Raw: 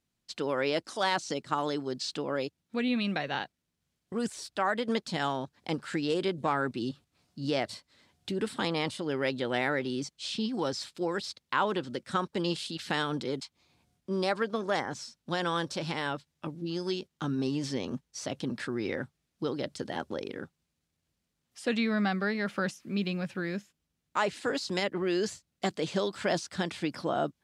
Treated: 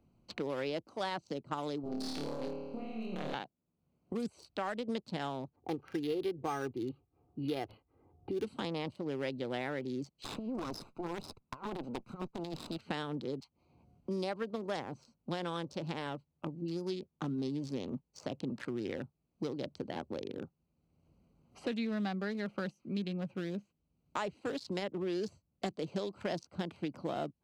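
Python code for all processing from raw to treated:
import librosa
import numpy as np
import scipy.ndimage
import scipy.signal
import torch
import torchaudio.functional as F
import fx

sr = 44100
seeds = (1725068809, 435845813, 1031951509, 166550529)

y = fx.chain(x, sr, fx.halfwave_gain(db=-12.0),
    fx.over_compress(threshold_db=-40.0, ratio=-1.0),
    fx.room_flutter(wall_m=4.6, rt60_s=1.2), at=(1.83, 3.34))
y = fx.chain(y, sr, fx.env_lowpass(base_hz=1000.0, full_db=-26.0),
    fx.comb(ms=2.5, depth=0.67),
    fx.resample_linear(factor=6), at=(5.56, 8.44))
y = fx.chain(y, sr, fx.lower_of_two(delay_ms=0.79),
    fx.over_compress(threshold_db=-35.0, ratio=-0.5), at=(10.24, 12.77))
y = fx.wiener(y, sr, points=25)
y = fx.dynamic_eq(y, sr, hz=1500.0, q=1.1, threshold_db=-43.0, ratio=4.0, max_db=-4)
y = fx.band_squash(y, sr, depth_pct=70)
y = y * 10.0 ** (-5.5 / 20.0)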